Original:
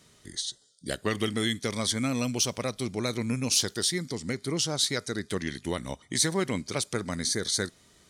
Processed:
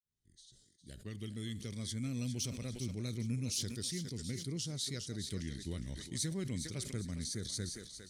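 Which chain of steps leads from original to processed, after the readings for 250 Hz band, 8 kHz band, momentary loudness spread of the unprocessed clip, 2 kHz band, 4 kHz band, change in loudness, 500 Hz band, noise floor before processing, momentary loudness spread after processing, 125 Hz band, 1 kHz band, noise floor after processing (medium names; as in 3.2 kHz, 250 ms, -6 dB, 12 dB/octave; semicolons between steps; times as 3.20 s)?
-9.5 dB, -11.5 dB, 9 LU, -17.5 dB, -13.0 dB, -10.5 dB, -16.0 dB, -60 dBFS, 6 LU, -4.0 dB, -23.5 dB, -69 dBFS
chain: fade-in on the opening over 2.28 s; amplifier tone stack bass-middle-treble 10-0-1; thinning echo 407 ms, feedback 34%, high-pass 490 Hz, level -10 dB; decay stretcher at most 57 dB/s; trim +8 dB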